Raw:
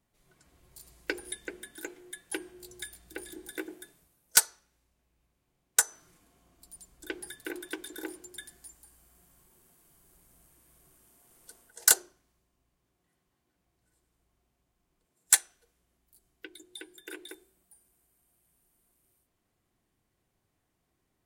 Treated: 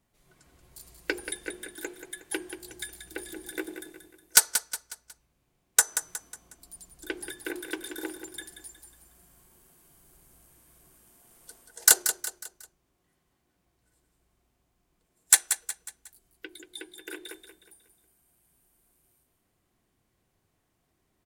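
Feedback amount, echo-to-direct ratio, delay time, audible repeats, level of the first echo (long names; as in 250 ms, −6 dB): 41%, −8.5 dB, 182 ms, 4, −9.5 dB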